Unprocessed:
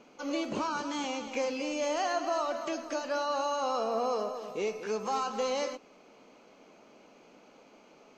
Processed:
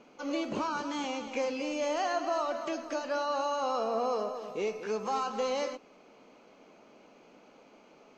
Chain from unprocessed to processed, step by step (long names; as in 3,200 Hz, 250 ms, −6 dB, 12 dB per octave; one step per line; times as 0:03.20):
high-shelf EQ 6,200 Hz −6.5 dB